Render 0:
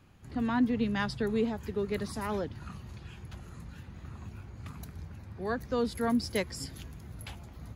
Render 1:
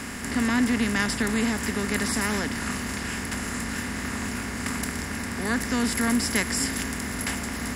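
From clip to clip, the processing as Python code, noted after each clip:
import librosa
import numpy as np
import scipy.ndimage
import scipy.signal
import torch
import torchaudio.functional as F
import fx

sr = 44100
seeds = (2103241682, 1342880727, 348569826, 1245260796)

y = fx.bin_compress(x, sr, power=0.4)
y = fx.graphic_eq_10(y, sr, hz=(125, 500, 1000, 2000, 4000, 8000), db=(-7, -12, -5, 4, -6, 10))
y = y * librosa.db_to_amplitude(5.5)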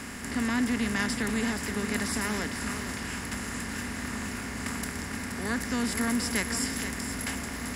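y = x + 10.0 ** (-9.0 / 20.0) * np.pad(x, (int(473 * sr / 1000.0), 0))[:len(x)]
y = y * librosa.db_to_amplitude(-4.5)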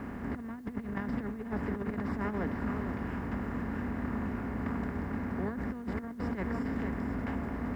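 y = scipy.signal.sosfilt(scipy.signal.butter(2, 1000.0, 'lowpass', fs=sr, output='sos'), x)
y = fx.over_compress(y, sr, threshold_db=-33.0, ratio=-0.5)
y = fx.quant_dither(y, sr, seeds[0], bits=12, dither='triangular')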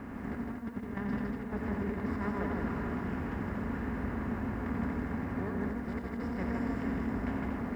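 y = fx.echo_multitap(x, sr, ms=(89, 158, 237), db=(-5.5, -3.0, -5.5))
y = y * librosa.db_to_amplitude(-3.0)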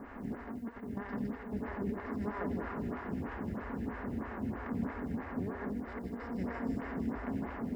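y = fx.stagger_phaser(x, sr, hz=3.1)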